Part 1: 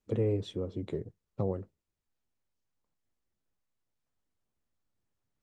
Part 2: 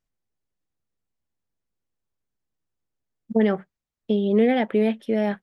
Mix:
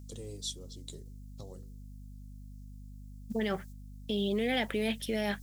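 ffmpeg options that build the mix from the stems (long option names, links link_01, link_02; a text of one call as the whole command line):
ffmpeg -i stem1.wav -i stem2.wav -filter_complex "[0:a]aexciter=amount=9.8:drive=8.5:freq=3600,bandreject=frequency=96.17:width_type=h:width=4,bandreject=frequency=192.34:width_type=h:width=4,bandreject=frequency=288.51:width_type=h:width=4,bandreject=frequency=384.68:width_type=h:width=4,bandreject=frequency=480.85:width_type=h:width=4,bandreject=frequency=577.02:width_type=h:width=4,volume=-5.5dB[link_01];[1:a]highshelf=frequency=3000:gain=12,alimiter=limit=-18dB:level=0:latency=1:release=22,volume=-6dB,asplit=2[link_02][link_03];[link_03]apad=whole_len=239187[link_04];[link_01][link_04]sidechaingate=range=-11dB:threshold=-52dB:ratio=16:detection=peak[link_05];[link_05][link_02]amix=inputs=2:normalize=0,aeval=exprs='val(0)+0.00501*(sin(2*PI*50*n/s)+sin(2*PI*2*50*n/s)/2+sin(2*PI*3*50*n/s)/3+sin(2*PI*4*50*n/s)/4+sin(2*PI*5*50*n/s)/5)':channel_layout=same,highshelf=frequency=2200:gain=11" out.wav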